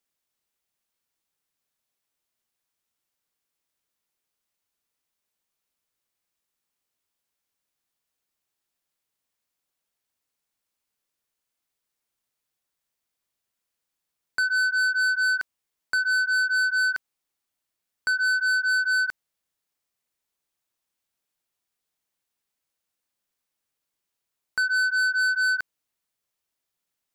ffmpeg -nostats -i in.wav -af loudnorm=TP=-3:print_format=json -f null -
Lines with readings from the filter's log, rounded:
"input_i" : "-22.7",
"input_tp" : "-20.7",
"input_lra" : "6.5",
"input_thresh" : "-33.1",